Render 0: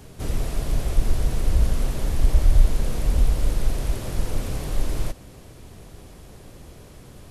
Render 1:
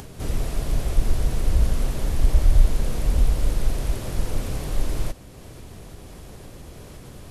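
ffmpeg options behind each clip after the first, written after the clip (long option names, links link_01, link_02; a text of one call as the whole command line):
ffmpeg -i in.wav -af "acompressor=mode=upward:threshold=-34dB:ratio=2.5" out.wav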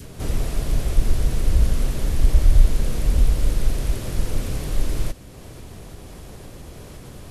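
ffmpeg -i in.wav -af "adynamicequalizer=threshold=0.00398:dfrequency=820:dqfactor=1.2:tfrequency=820:tqfactor=1.2:attack=5:release=100:ratio=0.375:range=2:mode=cutabove:tftype=bell,volume=2dB" out.wav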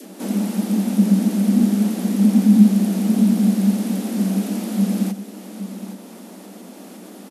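ffmpeg -i in.wav -af "crystalizer=i=0.5:c=0,afreqshift=180,aecho=1:1:818:0.237,volume=-1dB" out.wav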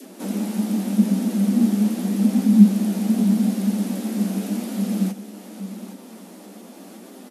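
ffmpeg -i in.wav -af "flanger=delay=7.5:depth=6.6:regen=44:speed=0.84:shape=sinusoidal,volume=1.5dB" out.wav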